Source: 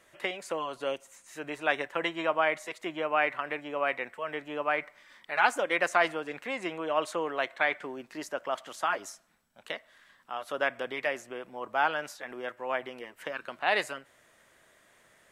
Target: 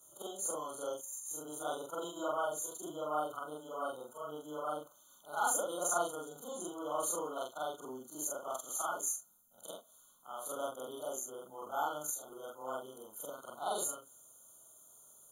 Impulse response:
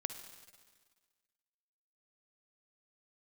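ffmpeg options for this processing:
-af "afftfilt=real='re':imag='-im':win_size=4096:overlap=0.75,aexciter=amount=12.7:drive=5.6:freq=6k,afftfilt=real='re*eq(mod(floor(b*sr/1024/1500),2),0)':imag='im*eq(mod(floor(b*sr/1024/1500),2),0)':win_size=1024:overlap=0.75,volume=-3dB"

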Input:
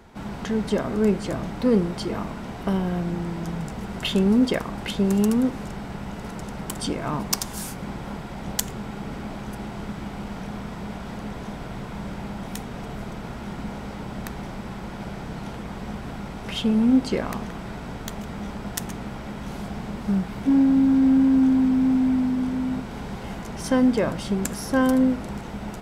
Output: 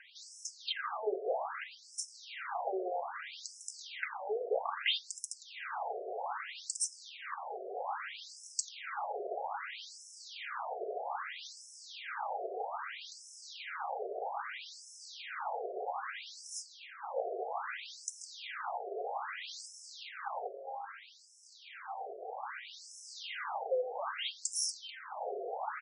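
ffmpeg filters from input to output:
-af "lowshelf=f=250:g=-9.5,aecho=1:1:2.5:0.3,acompressor=threshold=-30dB:ratio=3,asoftclip=type=tanh:threshold=-26.5dB,afftfilt=real='re*between(b*sr/1024,510*pow(7400/510,0.5+0.5*sin(2*PI*0.62*pts/sr))/1.41,510*pow(7400/510,0.5+0.5*sin(2*PI*0.62*pts/sr))*1.41)':imag='im*between(b*sr/1024,510*pow(7400/510,0.5+0.5*sin(2*PI*0.62*pts/sr))/1.41,510*pow(7400/510,0.5+0.5*sin(2*PI*0.62*pts/sr))*1.41)':win_size=1024:overlap=0.75,volume=6.5dB"

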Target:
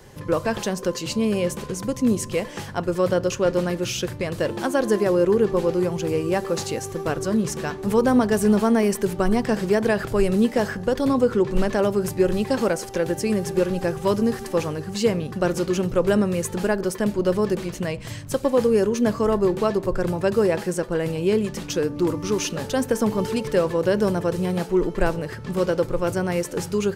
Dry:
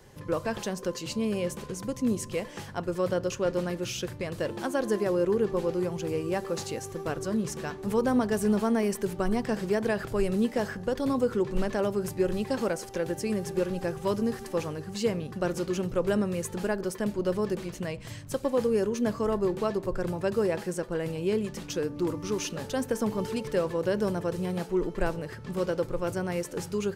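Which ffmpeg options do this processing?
-filter_complex "[0:a]asettb=1/sr,asplit=3[a][b][c];[a]atrim=end=11.084[d];[b]atrim=start=11.08:end=11.48,asetpts=PTS-STARTPTS,afade=t=in:d=0.004:c=qsin,afade=t=out:st=0.396:d=0.004:c=qsin,highshelf=f=8.7k:g=-6.5[e];[c]atrim=start=11.476[f];[d][e]acrossfade=d=0.004:c1=hsin:c2=qsin[g];[g][f]acrossfade=d=0.004:c1=qsin:c2=hsin,volume=7dB"

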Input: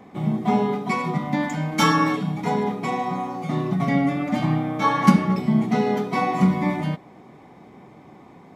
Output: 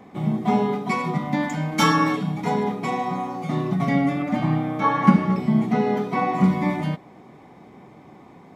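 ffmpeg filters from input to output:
-filter_complex "[0:a]asettb=1/sr,asplit=3[a][b][c];[a]atrim=end=4.224[d];[b]atrim=start=4.22:end=6.44,asetpts=PTS-STARTPTS,afade=t=in:d=0.004:c=qsin,afade=t=out:st=2.216:d=0.004:c=qsin,acrossover=split=2700[e][f];[f]acompressor=threshold=-48dB:ratio=4:attack=1:release=60[g];[e][g]amix=inputs=2:normalize=0[h];[c]atrim=start=6.436[i];[d][h]acrossfade=d=0.004:c1=hsin:c2=qsin[j];[j][i]acrossfade=d=0.004:c1=qsin:c2=hsin"

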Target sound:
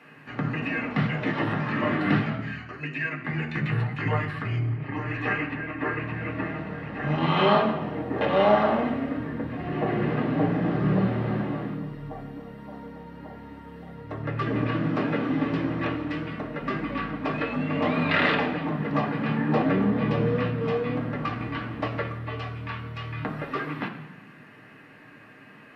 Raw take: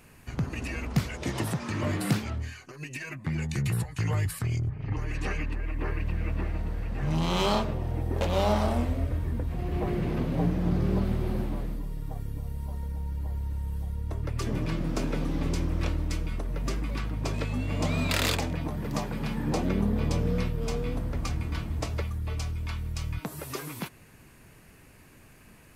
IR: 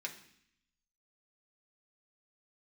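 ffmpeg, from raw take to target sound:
-filter_complex "[0:a]acrossover=split=4200[a][b];[b]acompressor=threshold=-57dB:ratio=4:attack=1:release=60[c];[a][c]amix=inputs=2:normalize=0,acrossover=split=150 3200:gain=0.2 1 0.1[d][e][f];[d][e][f]amix=inputs=3:normalize=0[g];[1:a]atrim=start_sample=2205,asetrate=33516,aresample=44100[h];[g][h]afir=irnorm=-1:irlink=0,volume=7.5dB"

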